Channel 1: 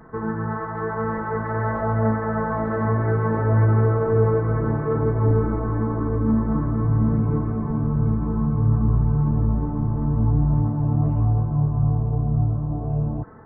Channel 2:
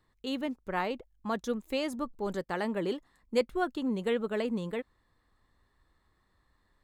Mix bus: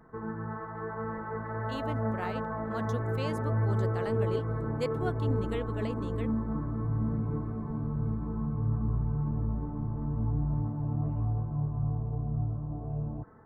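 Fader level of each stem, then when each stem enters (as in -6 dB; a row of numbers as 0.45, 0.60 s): -10.5, -6.0 dB; 0.00, 1.45 s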